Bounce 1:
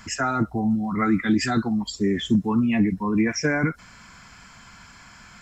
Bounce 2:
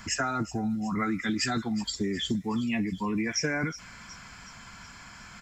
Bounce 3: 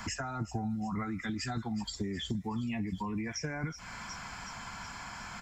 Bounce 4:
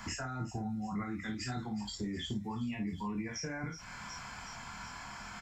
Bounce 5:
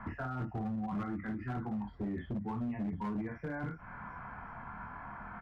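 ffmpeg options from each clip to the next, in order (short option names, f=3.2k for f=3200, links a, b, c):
-filter_complex "[0:a]acrossover=split=2400[a][b];[a]acompressor=threshold=-27dB:ratio=6[c];[b]aecho=1:1:368|736|1104|1472|1840|2208:0.2|0.112|0.0626|0.035|0.0196|0.011[d];[c][d]amix=inputs=2:normalize=0"
-filter_complex "[0:a]equalizer=f=840:w=1.8:g=8,acrossover=split=140[a][b];[b]acompressor=threshold=-39dB:ratio=6[c];[a][c]amix=inputs=2:normalize=0,volume=2dB"
-af "aecho=1:1:24|54:0.668|0.447,volume=-4.5dB"
-af "lowpass=f=1.6k:w=0.5412,lowpass=f=1.6k:w=1.3066,asoftclip=type=hard:threshold=-34dB,volume=2dB"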